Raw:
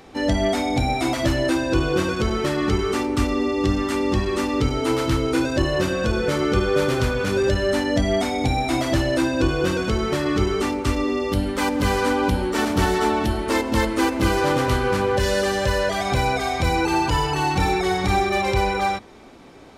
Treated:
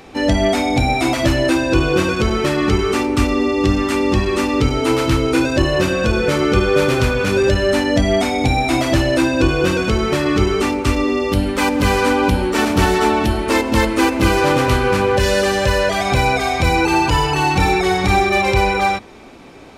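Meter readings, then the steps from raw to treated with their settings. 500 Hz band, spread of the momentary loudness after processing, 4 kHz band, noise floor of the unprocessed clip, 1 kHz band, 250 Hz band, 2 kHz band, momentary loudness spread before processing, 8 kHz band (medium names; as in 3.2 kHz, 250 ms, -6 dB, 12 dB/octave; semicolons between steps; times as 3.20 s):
+5.0 dB, 3 LU, +5.5 dB, -28 dBFS, +5.0 dB, +5.0 dB, +6.5 dB, 2 LU, +5.0 dB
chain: peaking EQ 2.5 kHz +5.5 dB 0.22 oct; trim +5 dB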